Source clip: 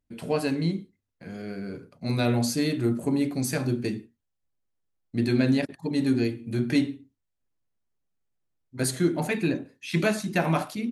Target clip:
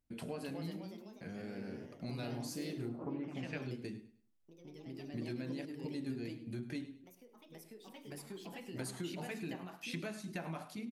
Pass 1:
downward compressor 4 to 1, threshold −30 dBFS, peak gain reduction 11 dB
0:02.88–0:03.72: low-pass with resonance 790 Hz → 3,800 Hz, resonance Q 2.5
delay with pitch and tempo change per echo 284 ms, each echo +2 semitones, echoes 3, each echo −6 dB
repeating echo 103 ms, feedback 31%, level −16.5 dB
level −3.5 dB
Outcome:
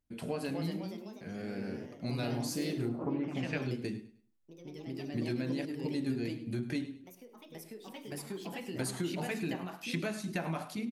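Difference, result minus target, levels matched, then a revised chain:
downward compressor: peak gain reduction −7 dB
downward compressor 4 to 1, threshold −39 dBFS, peak gain reduction 18 dB
0:02.88–0:03.72: low-pass with resonance 790 Hz → 3,800 Hz, resonance Q 2.5
delay with pitch and tempo change per echo 284 ms, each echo +2 semitones, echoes 3, each echo −6 dB
repeating echo 103 ms, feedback 31%, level −16.5 dB
level −3.5 dB

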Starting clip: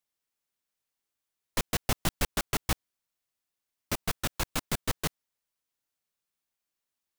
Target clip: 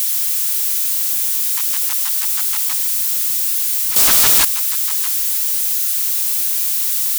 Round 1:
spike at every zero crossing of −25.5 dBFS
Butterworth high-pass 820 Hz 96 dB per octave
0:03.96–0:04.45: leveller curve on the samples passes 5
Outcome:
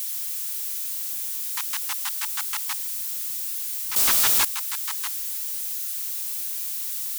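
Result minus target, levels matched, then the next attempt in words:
spike at every zero crossing: distortion −10 dB
spike at every zero crossing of −13.5 dBFS
Butterworth high-pass 820 Hz 96 dB per octave
0:03.96–0:04.45: leveller curve on the samples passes 5

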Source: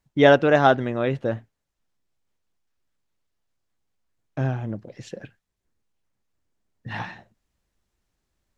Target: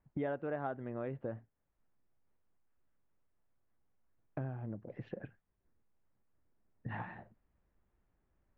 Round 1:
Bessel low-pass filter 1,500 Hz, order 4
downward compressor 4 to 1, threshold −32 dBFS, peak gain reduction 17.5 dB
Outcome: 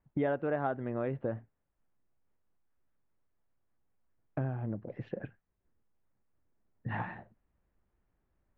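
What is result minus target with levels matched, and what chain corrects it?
downward compressor: peak gain reduction −6 dB
Bessel low-pass filter 1,500 Hz, order 4
downward compressor 4 to 1, threshold −40 dBFS, peak gain reduction 23.5 dB

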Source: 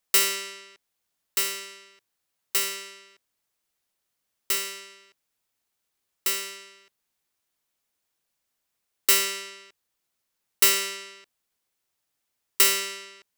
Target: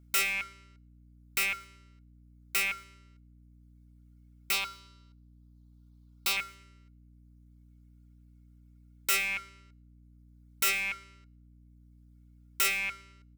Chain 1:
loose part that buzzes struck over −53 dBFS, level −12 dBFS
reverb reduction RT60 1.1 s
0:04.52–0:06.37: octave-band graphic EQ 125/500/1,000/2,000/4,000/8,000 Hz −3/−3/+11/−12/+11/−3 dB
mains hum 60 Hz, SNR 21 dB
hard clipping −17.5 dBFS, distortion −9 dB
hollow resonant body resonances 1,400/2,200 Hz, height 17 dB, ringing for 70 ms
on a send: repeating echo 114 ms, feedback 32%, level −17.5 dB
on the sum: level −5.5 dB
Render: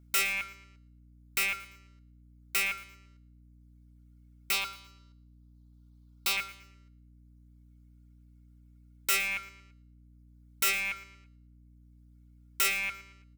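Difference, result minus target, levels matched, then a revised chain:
echo-to-direct +10.5 dB
loose part that buzzes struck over −53 dBFS, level −12 dBFS
reverb reduction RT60 1.1 s
0:04.52–0:06.37: octave-band graphic EQ 125/500/1,000/2,000/4,000/8,000 Hz −3/−3/+11/−12/+11/−3 dB
mains hum 60 Hz, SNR 21 dB
hard clipping −17.5 dBFS, distortion −9 dB
hollow resonant body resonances 1,400/2,200 Hz, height 17 dB, ringing for 70 ms
on a send: repeating echo 114 ms, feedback 32%, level −28 dB
on the sum: level −5.5 dB

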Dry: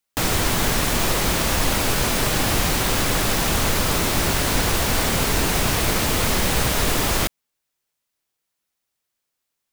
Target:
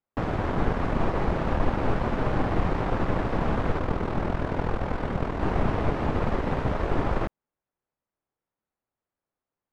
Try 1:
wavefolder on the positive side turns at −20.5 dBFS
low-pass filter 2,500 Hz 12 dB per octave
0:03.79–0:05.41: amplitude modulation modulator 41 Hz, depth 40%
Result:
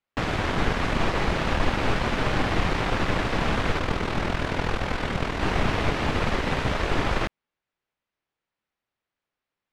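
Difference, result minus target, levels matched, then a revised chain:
2,000 Hz band +6.0 dB
wavefolder on the positive side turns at −20.5 dBFS
low-pass filter 1,100 Hz 12 dB per octave
0:03.79–0:05.41: amplitude modulation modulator 41 Hz, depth 40%

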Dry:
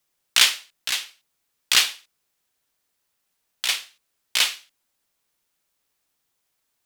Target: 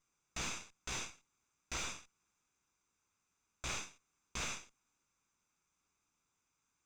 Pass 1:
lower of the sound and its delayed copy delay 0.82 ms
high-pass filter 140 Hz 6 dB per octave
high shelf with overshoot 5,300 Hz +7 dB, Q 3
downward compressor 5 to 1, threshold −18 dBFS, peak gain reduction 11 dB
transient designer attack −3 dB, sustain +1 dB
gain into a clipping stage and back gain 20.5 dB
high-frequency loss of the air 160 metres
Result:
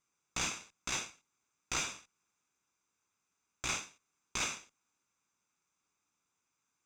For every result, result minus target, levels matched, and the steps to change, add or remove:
125 Hz band −4.5 dB; gain into a clipping stage and back: distortion −5 dB
remove: high-pass filter 140 Hz 6 dB per octave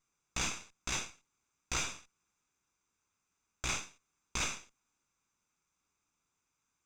gain into a clipping stage and back: distortion −5 dB
change: gain into a clipping stage and back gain 29.5 dB

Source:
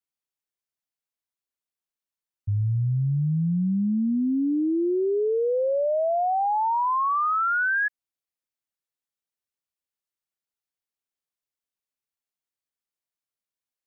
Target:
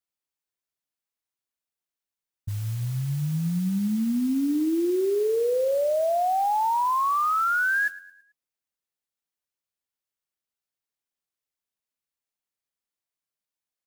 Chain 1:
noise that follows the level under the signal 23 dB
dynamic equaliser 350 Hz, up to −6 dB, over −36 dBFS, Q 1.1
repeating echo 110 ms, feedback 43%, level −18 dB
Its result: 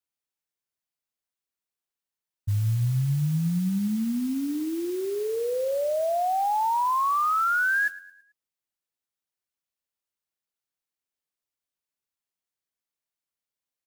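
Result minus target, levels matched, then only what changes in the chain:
125 Hz band +4.0 dB
change: dynamic equaliser 100 Hz, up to −6 dB, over −36 dBFS, Q 1.1

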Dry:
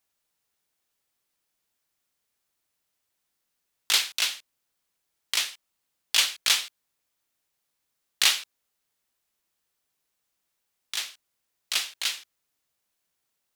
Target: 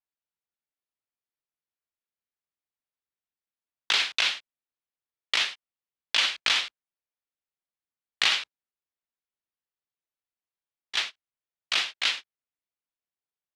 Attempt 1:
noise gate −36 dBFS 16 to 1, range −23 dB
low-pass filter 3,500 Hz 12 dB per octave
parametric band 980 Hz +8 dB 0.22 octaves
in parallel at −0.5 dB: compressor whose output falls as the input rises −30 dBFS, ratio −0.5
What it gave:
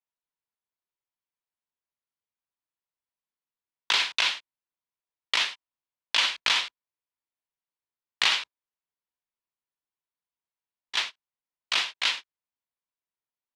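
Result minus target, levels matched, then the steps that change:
1,000 Hz band +2.5 dB
remove: parametric band 980 Hz +8 dB 0.22 octaves

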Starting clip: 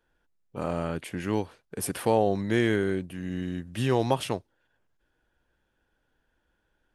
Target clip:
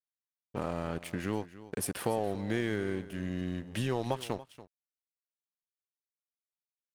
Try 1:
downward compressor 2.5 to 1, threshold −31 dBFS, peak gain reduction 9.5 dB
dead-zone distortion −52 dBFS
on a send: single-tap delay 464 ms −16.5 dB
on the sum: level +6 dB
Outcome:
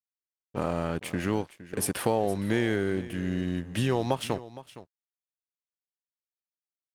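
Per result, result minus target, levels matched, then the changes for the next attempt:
echo 179 ms late; downward compressor: peak gain reduction −5 dB
change: single-tap delay 285 ms −16.5 dB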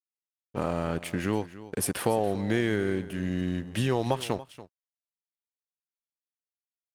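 downward compressor: peak gain reduction −5 dB
change: downward compressor 2.5 to 1, threshold −39.5 dBFS, peak gain reduction 14.5 dB

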